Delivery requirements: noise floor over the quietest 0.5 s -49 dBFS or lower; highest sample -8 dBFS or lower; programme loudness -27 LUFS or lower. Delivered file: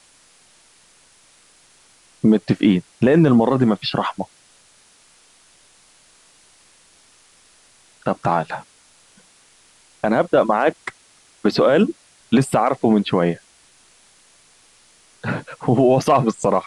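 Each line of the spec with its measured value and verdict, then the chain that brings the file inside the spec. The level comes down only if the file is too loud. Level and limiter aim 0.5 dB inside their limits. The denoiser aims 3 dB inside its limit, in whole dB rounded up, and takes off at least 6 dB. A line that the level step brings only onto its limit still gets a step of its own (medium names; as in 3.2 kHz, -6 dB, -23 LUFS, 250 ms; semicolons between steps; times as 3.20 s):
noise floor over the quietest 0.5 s -53 dBFS: pass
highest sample -5.0 dBFS: fail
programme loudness -18.5 LUFS: fail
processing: trim -9 dB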